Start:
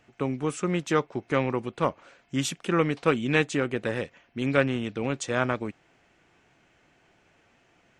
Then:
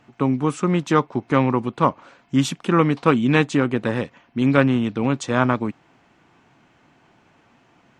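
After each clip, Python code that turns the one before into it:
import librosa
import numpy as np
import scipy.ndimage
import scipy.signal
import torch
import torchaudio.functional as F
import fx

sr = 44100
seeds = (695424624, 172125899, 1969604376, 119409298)

y = fx.graphic_eq(x, sr, hz=(125, 250, 1000, 4000), db=(7, 9, 10, 4))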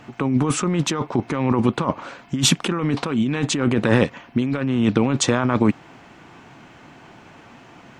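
y = fx.over_compress(x, sr, threshold_db=-25.0, ratio=-1.0)
y = y * 10.0 ** (5.5 / 20.0)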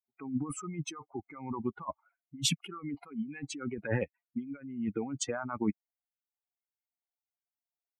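y = fx.bin_expand(x, sr, power=3.0)
y = y * 10.0 ** (-8.5 / 20.0)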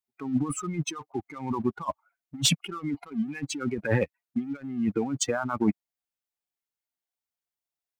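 y = fx.leveller(x, sr, passes=1)
y = y * 10.0 ** (3.5 / 20.0)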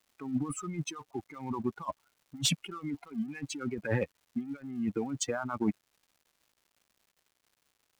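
y = fx.dmg_crackle(x, sr, seeds[0], per_s=280.0, level_db=-50.0)
y = y * 10.0 ** (-5.5 / 20.0)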